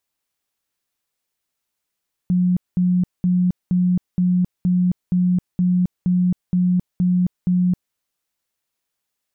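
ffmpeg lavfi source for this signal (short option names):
-f lavfi -i "aevalsrc='0.2*sin(2*PI*180*mod(t,0.47))*lt(mod(t,0.47),48/180)':d=5.64:s=44100"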